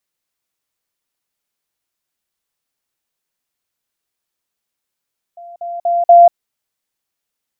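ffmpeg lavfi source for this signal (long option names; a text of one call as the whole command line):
ffmpeg -f lavfi -i "aevalsrc='pow(10,(-32+10*floor(t/0.24))/20)*sin(2*PI*691*t)*clip(min(mod(t,0.24),0.19-mod(t,0.24))/0.005,0,1)':duration=0.96:sample_rate=44100" out.wav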